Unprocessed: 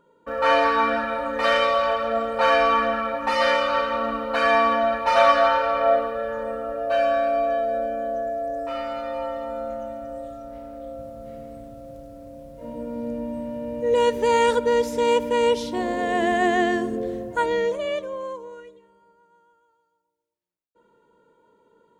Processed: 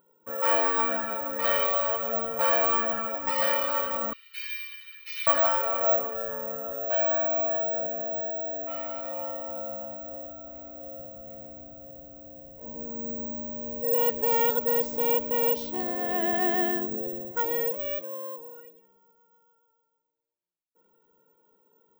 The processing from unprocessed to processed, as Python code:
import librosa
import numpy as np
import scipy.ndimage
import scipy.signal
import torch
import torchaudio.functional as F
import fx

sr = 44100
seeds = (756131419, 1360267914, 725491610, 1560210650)

y = fx.ellip_highpass(x, sr, hz=2200.0, order=4, stop_db=80, at=(4.13, 5.27))
y = (np.kron(scipy.signal.resample_poly(y, 1, 2), np.eye(2)[0]) * 2)[:len(y)]
y = F.gain(torch.from_numpy(y), -8.0).numpy()